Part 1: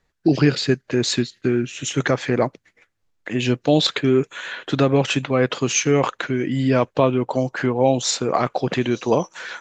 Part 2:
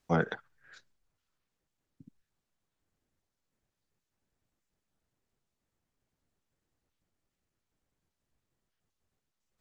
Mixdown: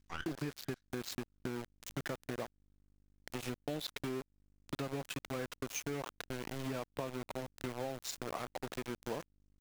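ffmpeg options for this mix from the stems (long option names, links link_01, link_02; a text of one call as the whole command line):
ffmpeg -i stem1.wav -i stem2.wav -filter_complex "[0:a]aeval=exprs='val(0)*gte(abs(val(0)),0.119)':channel_layout=same,volume=-13.5dB,asplit=2[link_01][link_02];[1:a]highpass=frequency=1000:width=0.5412,highpass=frequency=1000:width=1.3066,aeval=exprs='val(0)+0.000631*(sin(2*PI*50*n/s)+sin(2*PI*2*50*n/s)/2+sin(2*PI*3*50*n/s)/3+sin(2*PI*4*50*n/s)/4+sin(2*PI*5*50*n/s)/5)':channel_layout=same,aeval=exprs='max(val(0),0)':channel_layout=same,volume=-1.5dB[link_03];[link_02]apad=whole_len=423662[link_04];[link_03][link_04]sidechaincompress=threshold=-34dB:ratio=3:attack=40:release=333[link_05];[link_01][link_05]amix=inputs=2:normalize=0,acompressor=threshold=-36dB:ratio=6" out.wav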